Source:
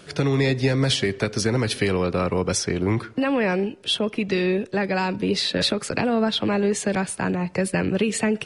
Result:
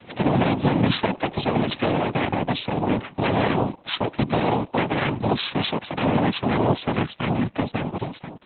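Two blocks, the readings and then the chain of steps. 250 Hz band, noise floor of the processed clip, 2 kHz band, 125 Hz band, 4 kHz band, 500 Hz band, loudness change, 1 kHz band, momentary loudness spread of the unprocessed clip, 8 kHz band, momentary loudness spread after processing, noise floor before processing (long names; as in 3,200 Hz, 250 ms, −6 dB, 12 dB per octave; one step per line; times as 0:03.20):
0.0 dB, −49 dBFS, −2.0 dB, +0.5 dB, −4.0 dB, −2.0 dB, −0.5 dB, +5.0 dB, 4 LU, below −40 dB, 6 LU, −43 dBFS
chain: fade-out on the ending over 1.16 s
reversed playback
upward compression, threshold −39 dBFS
reversed playback
gain into a clipping stage and back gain 14 dB
cochlear-implant simulation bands 4
level +2 dB
Opus 8 kbit/s 48,000 Hz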